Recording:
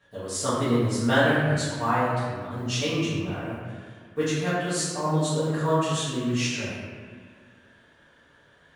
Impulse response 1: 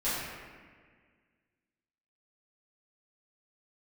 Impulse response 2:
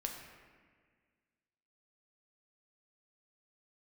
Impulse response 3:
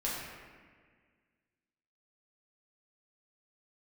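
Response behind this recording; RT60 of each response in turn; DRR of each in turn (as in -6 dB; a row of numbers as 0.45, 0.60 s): 1; 1.7, 1.7, 1.7 s; -13.5, 1.5, -7.0 dB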